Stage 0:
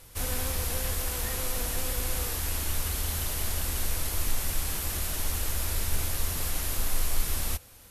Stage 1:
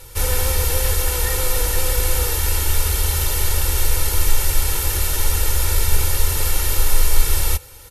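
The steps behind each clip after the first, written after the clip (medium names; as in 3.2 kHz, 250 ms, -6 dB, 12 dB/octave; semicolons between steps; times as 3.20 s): comb 2.2 ms, depth 78%; trim +8 dB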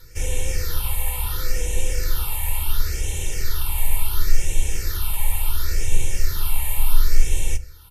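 phase shifter stages 6, 0.71 Hz, lowest notch 380–1300 Hz; reverberation RT60 0.25 s, pre-delay 5 ms, DRR 12 dB; trim -4.5 dB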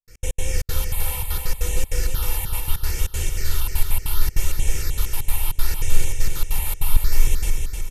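trance gate ".x.x.xxx.xx.xxxx" 196 bpm -60 dB; on a send: feedback delay 308 ms, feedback 46%, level -5 dB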